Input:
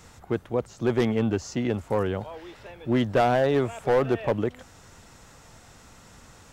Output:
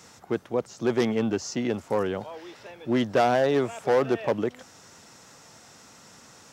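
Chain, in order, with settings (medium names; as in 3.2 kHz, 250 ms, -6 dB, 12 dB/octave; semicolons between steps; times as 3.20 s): high-pass 160 Hz 12 dB/octave; peaking EQ 5.5 kHz +6 dB 0.62 oct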